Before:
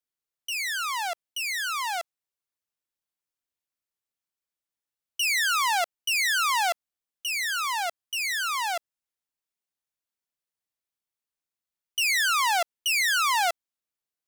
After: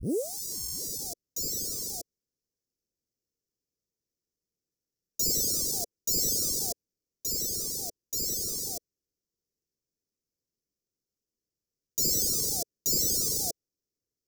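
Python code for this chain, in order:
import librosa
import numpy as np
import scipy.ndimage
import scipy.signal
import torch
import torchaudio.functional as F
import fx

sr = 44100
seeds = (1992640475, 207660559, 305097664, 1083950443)

y = fx.tape_start_head(x, sr, length_s=1.04)
y = fx.sample_hold(y, sr, seeds[0], rate_hz=9700.0, jitter_pct=0)
y = scipy.signal.sosfilt(scipy.signal.ellip(3, 1.0, 40, [470.0, 5400.0], 'bandstop', fs=sr, output='sos'), y)
y = F.gain(torch.from_numpy(y), 4.5).numpy()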